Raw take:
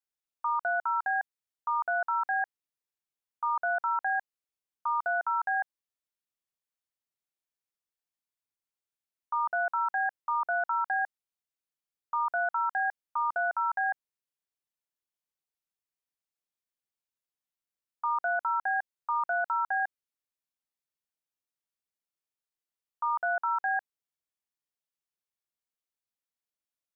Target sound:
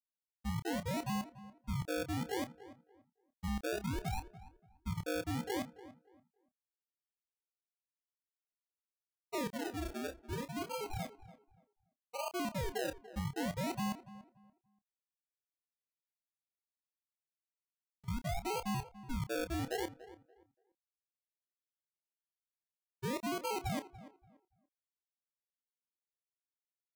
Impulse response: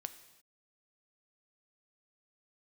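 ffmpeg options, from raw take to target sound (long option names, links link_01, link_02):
-filter_complex "[0:a]agate=range=-33dB:threshold=-22dB:ratio=3:detection=peak,highpass=frequency=1300:poles=1,acompressor=threshold=-39dB:ratio=6,asettb=1/sr,asplit=3[link_01][link_02][link_03];[link_01]atrim=end=9.484[link_04];[link_02]atrim=start=9.48:end=12.27,asetpts=PTS-STARTPTS,afade=type=in:duration=0.004:curve=qsin,afade=type=out:start_time=2.786:duration=0.004:curve=qsin,flanger=delay=18:depth=3.9:speed=1.9[link_05];[link_03]atrim=start=12.266[link_06];[link_04][link_05]acrossfade=duration=0.004:curve1=hsin:curve2=qsin[link_07];[link_07][link_06]acrossfade=duration=0.004:curve1=qsin:curve2=hsin,acrusher=samples=34:mix=1:aa=0.000001:lfo=1:lforange=20.4:lforate=0.63,asplit=2[link_08][link_09];[link_09]adelay=29,volume=-11.5dB[link_10];[link_08][link_10]amix=inputs=2:normalize=0,asplit=2[link_11][link_12];[link_12]adelay=288,lowpass=frequency=1700:poles=1,volume=-15.5dB,asplit=2[link_13][link_14];[link_14]adelay=288,lowpass=frequency=1700:poles=1,volume=0.25,asplit=2[link_15][link_16];[link_16]adelay=288,lowpass=frequency=1700:poles=1,volume=0.25[link_17];[link_11][link_13][link_15][link_17]amix=inputs=4:normalize=0,volume=5.5dB"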